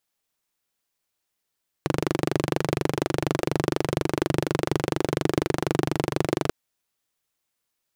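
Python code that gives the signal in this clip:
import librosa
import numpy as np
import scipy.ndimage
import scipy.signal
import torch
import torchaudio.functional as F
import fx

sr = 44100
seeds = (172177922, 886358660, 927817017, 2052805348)

y = fx.engine_single(sr, seeds[0], length_s=4.64, rpm=2900, resonances_hz=(150.0, 330.0))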